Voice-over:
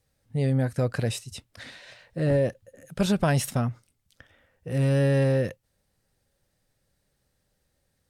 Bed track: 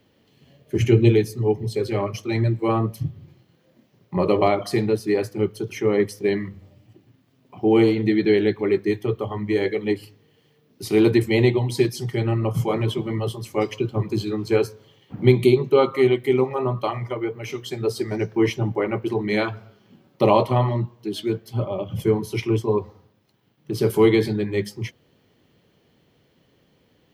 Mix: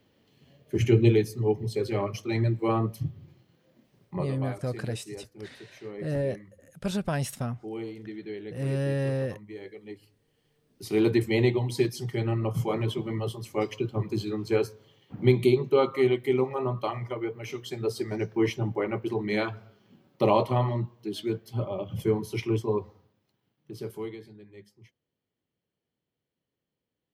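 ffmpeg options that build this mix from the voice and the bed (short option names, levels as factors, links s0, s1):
-filter_complex "[0:a]adelay=3850,volume=0.501[s0];[1:a]volume=3.16,afade=t=out:st=4.02:d=0.29:silence=0.16788,afade=t=in:st=9.89:d=1.32:silence=0.188365,afade=t=out:st=22.62:d=1.56:silence=0.1[s1];[s0][s1]amix=inputs=2:normalize=0"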